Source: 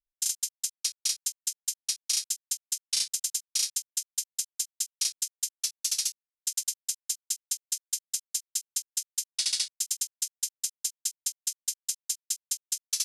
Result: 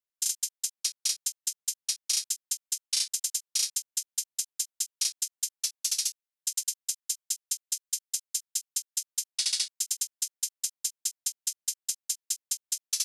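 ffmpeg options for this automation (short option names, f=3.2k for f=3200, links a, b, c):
-af "asetnsamples=n=441:p=0,asendcmd='0.74 highpass f 92;2.31 highpass f 300;3.52 highpass f 77;4.35 highpass f 250;5.93 highpass f 1000;9.06 highpass f 240;10.62 highpass f 110',highpass=f=340:p=1"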